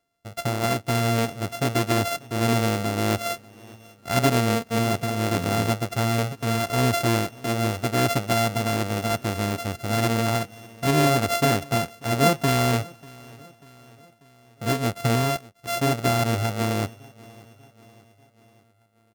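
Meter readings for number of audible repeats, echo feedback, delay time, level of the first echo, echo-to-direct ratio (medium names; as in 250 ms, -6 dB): 3, 54%, 591 ms, -23.0 dB, -21.5 dB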